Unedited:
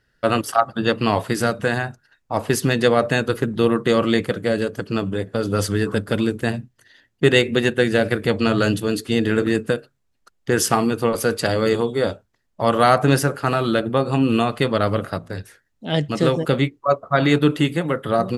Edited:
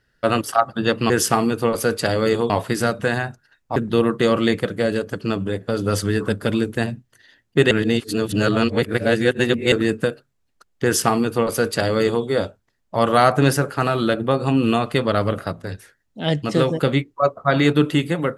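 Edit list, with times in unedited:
0:02.36–0:03.42: remove
0:07.37–0:09.38: reverse
0:10.50–0:11.90: duplicate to 0:01.10

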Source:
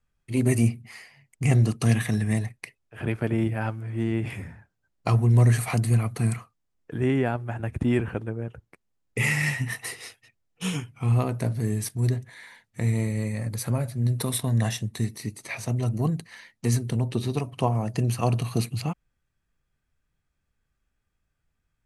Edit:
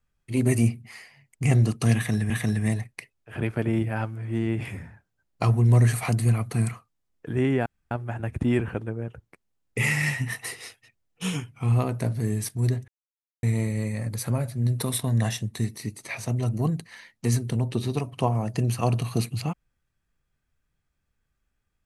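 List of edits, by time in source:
0:01.95–0:02.30: repeat, 2 plays
0:07.31: splice in room tone 0.25 s
0:12.28–0:12.83: silence

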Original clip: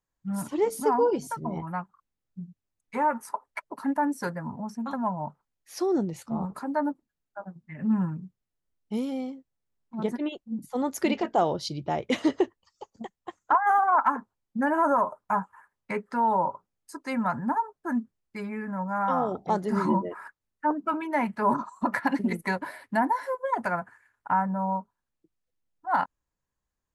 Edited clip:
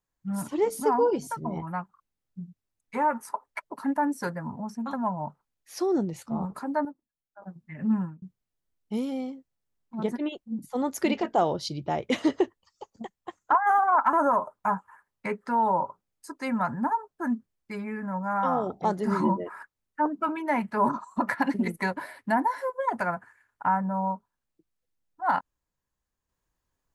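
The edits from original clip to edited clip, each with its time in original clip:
0:06.85–0:07.42: clip gain −10.5 dB
0:07.92–0:08.22: fade out
0:14.13–0:14.78: remove

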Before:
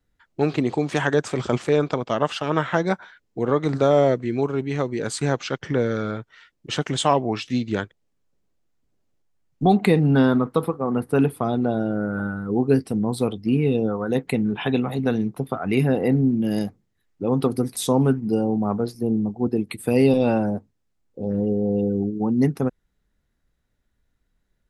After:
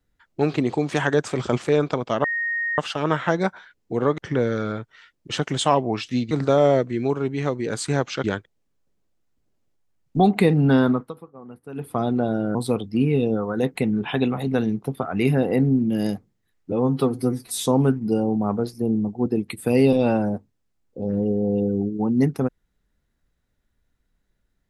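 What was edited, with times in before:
0:02.24: insert tone 1,860 Hz −22 dBFS 0.54 s
0:03.64–0:05.57: move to 0:07.70
0:10.38–0:11.42: duck −18 dB, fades 0.21 s
0:12.01–0:13.07: remove
0:17.24–0:17.86: time-stretch 1.5×

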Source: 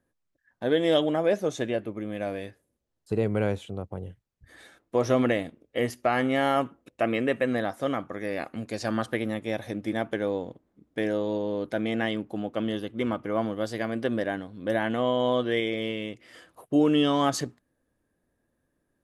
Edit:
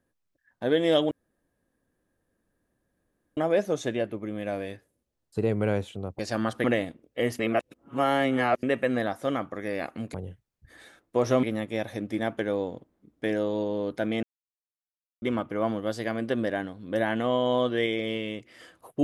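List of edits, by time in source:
0:01.11: splice in room tone 2.26 s
0:03.93–0:05.22: swap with 0:08.72–0:09.17
0:05.97–0:07.21: reverse
0:11.97–0:12.96: silence

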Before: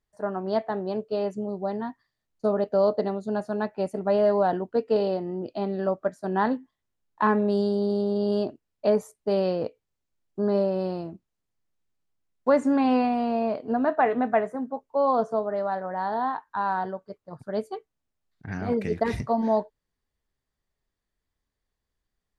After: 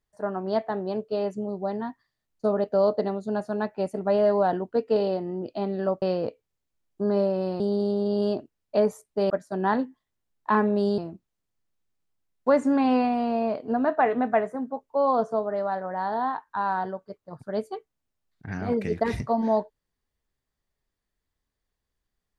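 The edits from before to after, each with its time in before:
0:06.02–0:07.70: swap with 0:09.40–0:10.98

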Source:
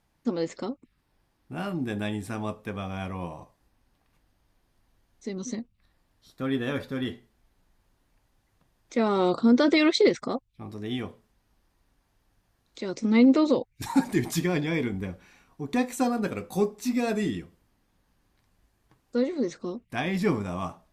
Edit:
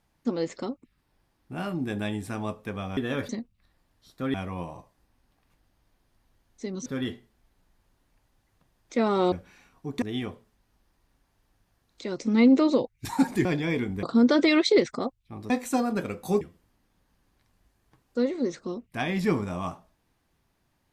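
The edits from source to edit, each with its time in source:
0:02.97–0:05.49: swap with 0:06.54–0:06.86
0:09.32–0:10.79: swap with 0:15.07–0:15.77
0:14.22–0:14.49: remove
0:16.68–0:17.39: remove

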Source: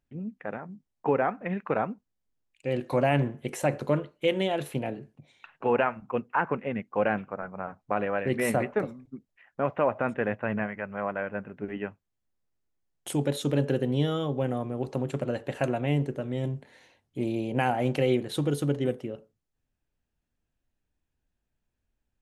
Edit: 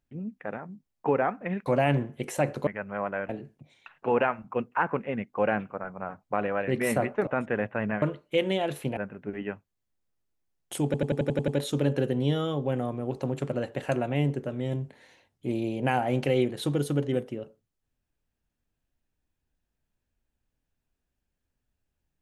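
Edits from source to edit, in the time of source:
0:01.66–0:02.91: remove
0:03.92–0:04.87: swap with 0:10.70–0:11.32
0:08.85–0:09.95: remove
0:13.20: stutter 0.09 s, 8 plays

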